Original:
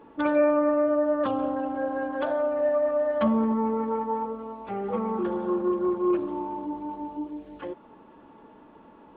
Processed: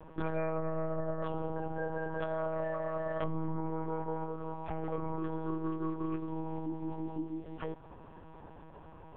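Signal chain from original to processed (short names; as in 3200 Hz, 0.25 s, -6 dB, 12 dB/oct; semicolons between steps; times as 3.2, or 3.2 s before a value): compressor 3:1, threshold -35 dBFS, peak gain reduction 13 dB; monotone LPC vocoder at 8 kHz 160 Hz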